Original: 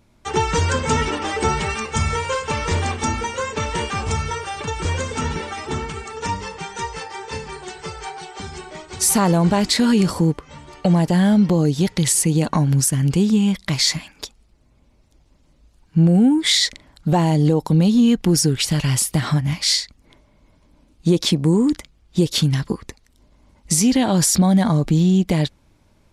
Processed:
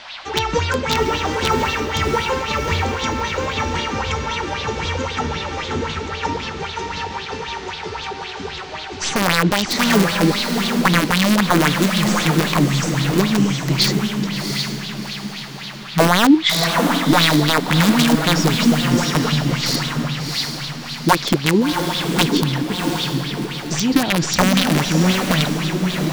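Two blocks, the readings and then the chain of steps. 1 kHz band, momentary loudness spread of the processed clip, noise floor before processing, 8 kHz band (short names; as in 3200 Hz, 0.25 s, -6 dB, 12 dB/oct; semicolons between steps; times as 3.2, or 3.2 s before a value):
+5.0 dB, 12 LU, -57 dBFS, -3.0 dB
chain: tracing distortion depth 0.022 ms; steep low-pass 6800 Hz; wrapped overs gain 8.5 dB; diffused feedback echo 0.708 s, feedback 42%, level -3 dB; band noise 610–4400 Hz -36 dBFS; LFO bell 3.8 Hz 260–3900 Hz +12 dB; gain -3.5 dB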